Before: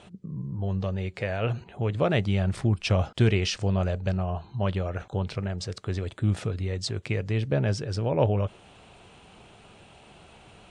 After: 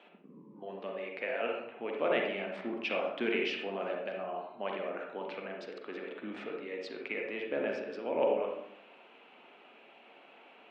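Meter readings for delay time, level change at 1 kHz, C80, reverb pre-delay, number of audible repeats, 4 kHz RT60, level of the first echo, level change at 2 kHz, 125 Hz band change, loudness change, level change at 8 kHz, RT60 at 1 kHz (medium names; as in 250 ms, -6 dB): no echo, -3.5 dB, 6.0 dB, 39 ms, no echo, 0.45 s, no echo, -1.5 dB, -32.0 dB, -8.0 dB, under -20 dB, 0.70 s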